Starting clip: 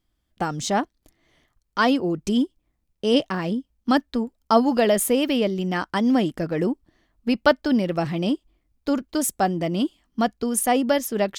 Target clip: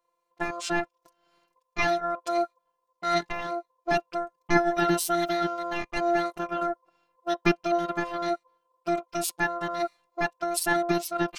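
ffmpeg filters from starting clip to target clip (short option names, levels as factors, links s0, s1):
-filter_complex "[0:a]aeval=exprs='val(0)*sin(2*PI*960*n/s)':c=same,afftfilt=real='hypot(re,im)*cos(PI*b)':imag='0':win_size=512:overlap=0.75,asplit=2[s0][s1];[s1]asetrate=22050,aresample=44100,atempo=2,volume=0.501[s2];[s0][s2]amix=inputs=2:normalize=0"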